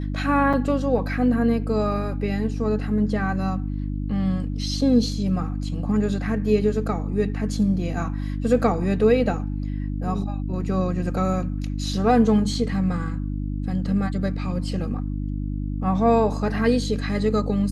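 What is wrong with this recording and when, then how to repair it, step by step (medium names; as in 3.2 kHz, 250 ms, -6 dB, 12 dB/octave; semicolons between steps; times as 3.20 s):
hum 50 Hz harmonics 6 -27 dBFS
0.53–0.54 s: dropout 5 ms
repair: de-hum 50 Hz, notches 6; interpolate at 0.53 s, 5 ms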